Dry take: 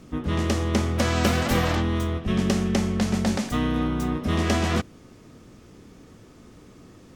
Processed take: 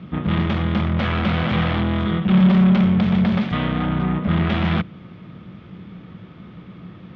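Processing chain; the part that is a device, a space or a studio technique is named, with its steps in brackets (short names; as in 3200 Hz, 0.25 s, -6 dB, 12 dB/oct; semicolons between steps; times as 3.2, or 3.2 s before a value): 2.05–2.84 comb 5.4 ms, depth 70%; 3.99–4.5 air absorption 180 m; guitar amplifier (tube stage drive 28 dB, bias 0.6; tone controls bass +6 dB, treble -7 dB; speaker cabinet 99–3700 Hz, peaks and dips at 180 Hz +9 dB, 260 Hz -7 dB, 430 Hz -5 dB, 1300 Hz +4 dB, 2200 Hz +4 dB, 3400 Hz +7 dB); gain +8 dB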